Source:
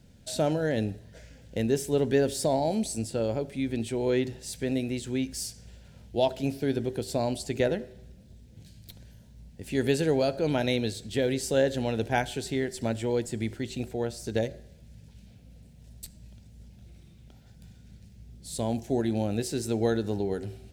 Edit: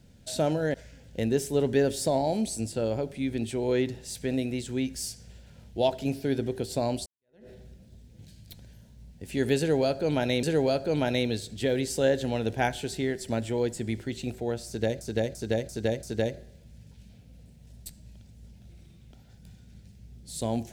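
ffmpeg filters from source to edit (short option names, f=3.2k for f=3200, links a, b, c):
-filter_complex "[0:a]asplit=8[a][b][c][d][e][f][g][h];[a]atrim=end=0.742[i];[b]atrim=start=1.118:end=7.44,asetpts=PTS-STARTPTS,afade=t=out:st=6.318:d=0.004:c=hsin[j];[c]atrim=start=7.44:end=10.812,asetpts=PTS-STARTPTS,afade=t=in:d=0.43:c=exp[k];[d]atrim=start=9.958:end=14.542[l];[e]atrim=start=14.198:end=14.542[m];[f]atrim=start=14.198:end=14.542[n];[g]atrim=start=14.198:end=14.542[o];[h]atrim=start=14.198[p];[j][k]concat=n=2:v=0:a=1[q];[i][q]acrossfade=d=0.004:c1=hsin:c2=hsin[r];[r][l]acrossfade=d=0.004:c1=hsin:c2=hsin[s];[s][m]acrossfade=d=0.004:c1=hsin:c2=hsin[t];[t][n]acrossfade=d=0.004:c1=hsin:c2=hsin[u];[u][o]acrossfade=d=0.004:c1=hsin:c2=hsin[v];[v][p]acrossfade=d=0.004:c1=hsin:c2=hsin"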